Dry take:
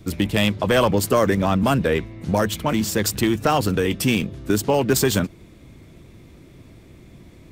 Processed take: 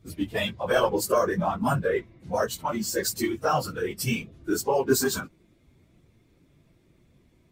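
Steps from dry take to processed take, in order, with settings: phase scrambler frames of 50 ms; spectral noise reduction 11 dB; gain -4 dB

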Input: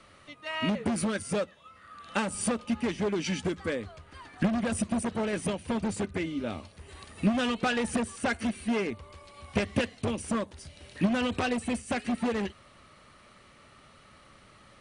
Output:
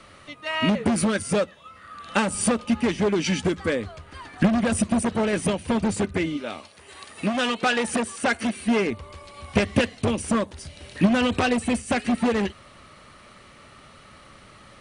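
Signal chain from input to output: 6.36–8.66 HPF 800 Hz -> 200 Hz 6 dB/oct; gain +7 dB

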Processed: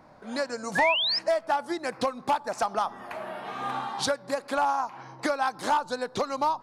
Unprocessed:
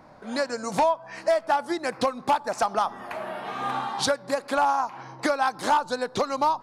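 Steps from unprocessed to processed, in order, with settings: painted sound rise, 0.75–1.19, 1600–5400 Hz -23 dBFS; gain -3 dB

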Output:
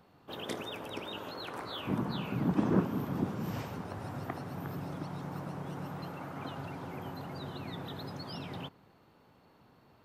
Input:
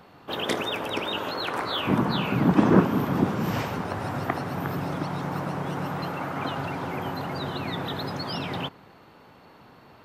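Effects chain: EQ curve 110 Hz 0 dB, 2000 Hz -6 dB, 9700 Hz -1 dB; gain -8 dB

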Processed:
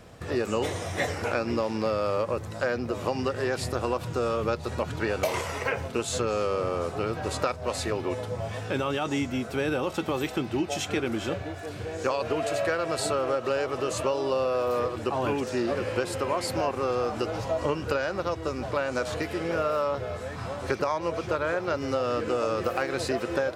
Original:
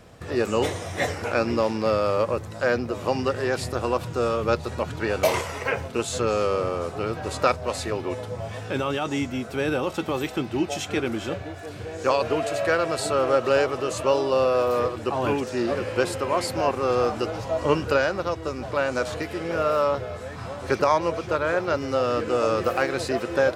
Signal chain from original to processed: compressor, threshold -23 dBFS, peak gain reduction 9 dB

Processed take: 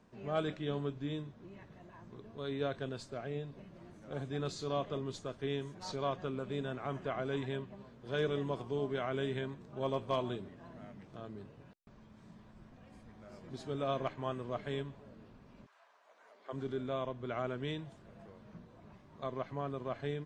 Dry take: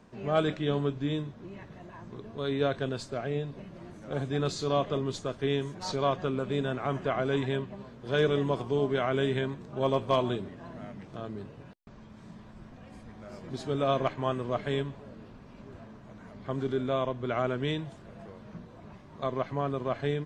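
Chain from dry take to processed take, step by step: 15.65–16.52 HPF 960 Hz -> 360 Hz 24 dB/oct; gain -8 dB

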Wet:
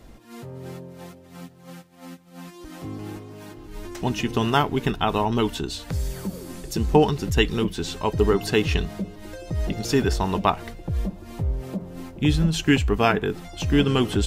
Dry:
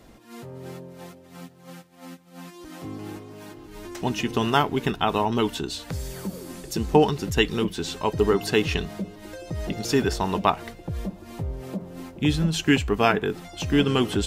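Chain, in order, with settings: low shelf 80 Hz +11 dB

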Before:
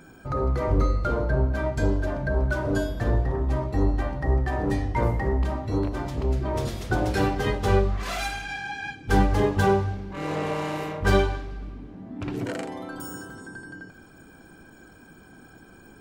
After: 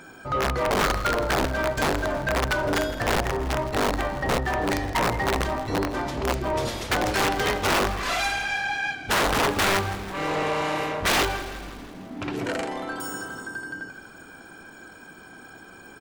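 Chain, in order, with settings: wrapped overs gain 16.5 dB; overdrive pedal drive 13 dB, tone 7500 Hz, clips at -16.5 dBFS; frequency-shifting echo 0.163 s, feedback 63%, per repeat -36 Hz, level -15 dB

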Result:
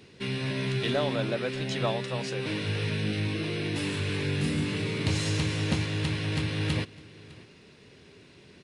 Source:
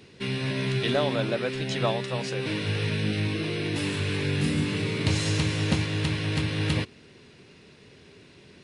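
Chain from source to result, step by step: in parallel at -8 dB: soft clip -24 dBFS, distortion -13 dB; on the sum: echo 0.606 s -21.5 dB; gain -4.5 dB

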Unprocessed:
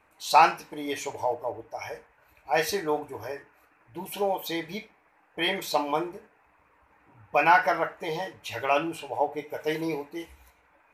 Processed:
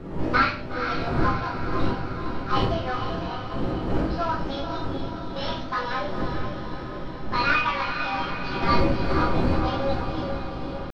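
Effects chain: CVSD 16 kbps; wind noise 220 Hz -30 dBFS; pitch shift +9 st; on a send: diffused feedback echo 0.472 s, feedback 63%, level -7 dB; on the sum: shoebox room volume 54 m³, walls mixed, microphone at 0.74 m; gain -4.5 dB

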